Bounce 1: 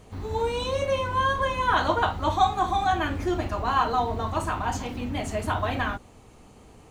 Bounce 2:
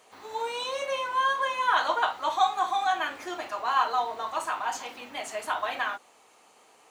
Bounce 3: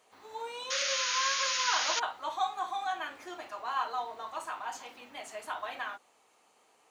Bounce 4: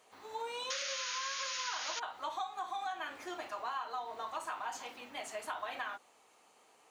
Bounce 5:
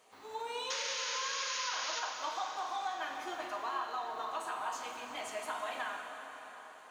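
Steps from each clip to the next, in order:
HPF 710 Hz 12 dB/oct
painted sound noise, 0.7–2, 1200–6900 Hz -24 dBFS; gain -8 dB
compressor 12:1, threshold -36 dBFS, peak gain reduction 12 dB; gain +1 dB
plate-style reverb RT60 4.9 s, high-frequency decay 0.8×, DRR 2.5 dB

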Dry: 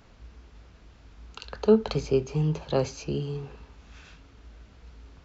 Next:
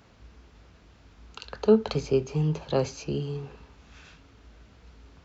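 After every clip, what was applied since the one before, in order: HPF 63 Hz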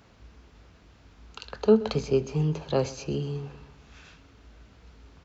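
feedback echo 0.127 s, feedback 54%, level -19 dB

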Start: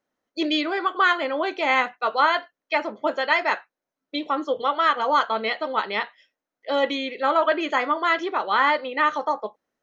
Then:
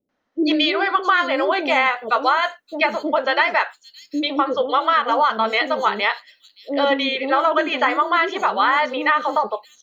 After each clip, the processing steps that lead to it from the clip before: three bands offset in time lows, mids, highs 90/660 ms, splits 450/5900 Hz; compressor, threshold -22 dBFS, peak gain reduction 8.5 dB; gain +8.5 dB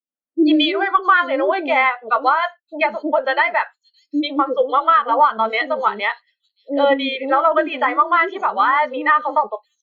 added harmonics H 4 -26 dB, 6 -38 dB, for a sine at -4.5 dBFS; spectral expander 1.5:1; gain +1.5 dB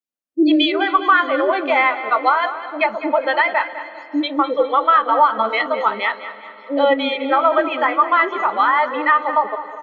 feedback echo 0.203 s, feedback 42%, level -13 dB; on a send at -17.5 dB: reverb RT60 3.7 s, pre-delay 0.184 s

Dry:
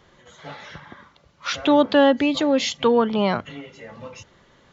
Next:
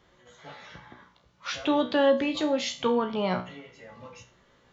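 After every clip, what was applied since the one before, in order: resonator 61 Hz, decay 0.36 s, harmonics all, mix 80%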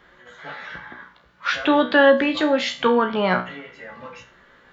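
fifteen-band EQ 100 Hz -11 dB, 1600 Hz +10 dB, 6300 Hz -8 dB; gain +6.5 dB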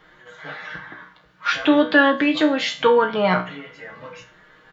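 comb 6.4 ms, depth 61%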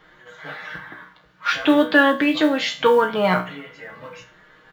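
modulation noise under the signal 35 dB

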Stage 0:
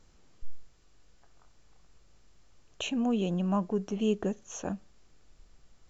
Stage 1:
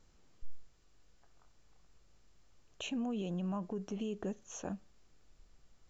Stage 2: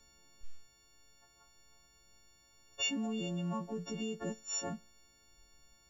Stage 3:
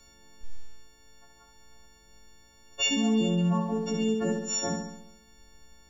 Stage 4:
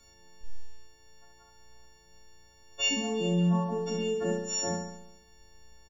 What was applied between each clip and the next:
limiter -25 dBFS, peak gain reduction 8 dB; gain -5 dB
frequency quantiser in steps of 4 st
flutter echo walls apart 11.7 m, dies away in 0.81 s; gain +7.5 dB
doubler 34 ms -4 dB; gain -3.5 dB

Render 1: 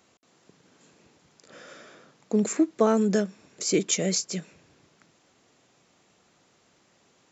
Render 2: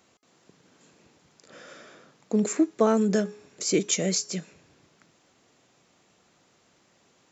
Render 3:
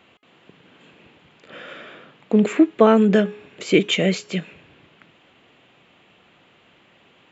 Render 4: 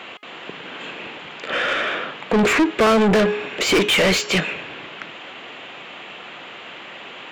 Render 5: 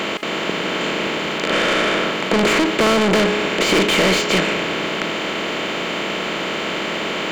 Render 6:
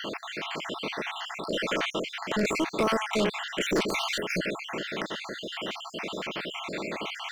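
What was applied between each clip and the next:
de-hum 417.5 Hz, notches 30
resonant high shelf 4100 Hz -11.5 dB, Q 3; gain +7.5 dB
overdrive pedal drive 35 dB, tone 3800 Hz, clips at -1 dBFS; gain -7.5 dB
per-bin compression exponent 0.4; gain -4 dB
random spectral dropouts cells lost 56%; wavefolder -10.5 dBFS; gain -8 dB

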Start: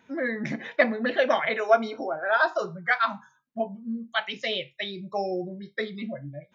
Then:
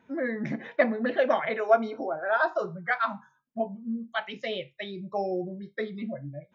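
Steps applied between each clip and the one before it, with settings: high shelf 2200 Hz -11.5 dB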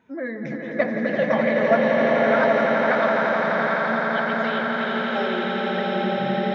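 swelling echo 85 ms, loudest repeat 8, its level -7.5 dB; bloom reverb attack 0.81 s, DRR -0.5 dB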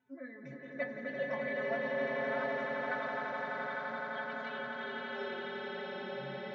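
metallic resonator 130 Hz, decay 0.21 s, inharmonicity 0.008; gain -6.5 dB

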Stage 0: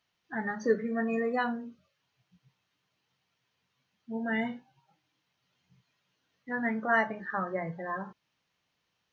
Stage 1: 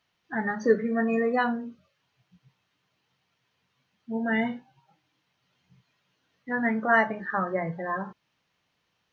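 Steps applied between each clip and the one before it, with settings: high shelf 5500 Hz -6 dB; gain +5 dB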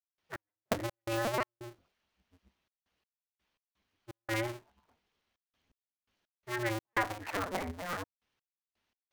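cycle switcher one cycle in 2, inverted; step gate ".x..x.xx.xxxxxx" 84 bpm -60 dB; gain -7.5 dB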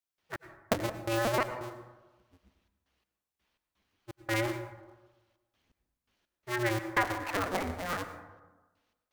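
plate-style reverb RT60 1.2 s, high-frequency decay 0.35×, pre-delay 85 ms, DRR 10 dB; gain +3 dB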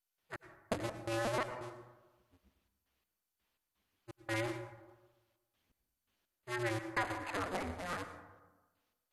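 soft clip -19 dBFS, distortion -21 dB; gain -5.5 dB; MP2 64 kbps 48000 Hz

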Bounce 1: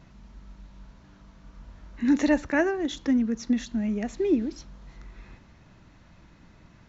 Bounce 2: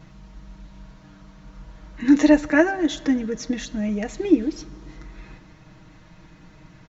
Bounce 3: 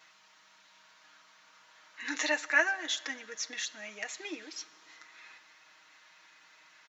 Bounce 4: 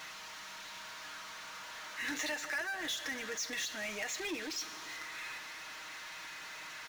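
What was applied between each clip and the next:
comb 6.4 ms, depth 69%; reverb RT60 3.0 s, pre-delay 8 ms, DRR 19 dB; gain +4 dB
HPF 1400 Hz 12 dB/oct
compressor 5:1, threshold -37 dBFS, peak gain reduction 15.5 dB; power-law curve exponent 0.5; gain -4 dB

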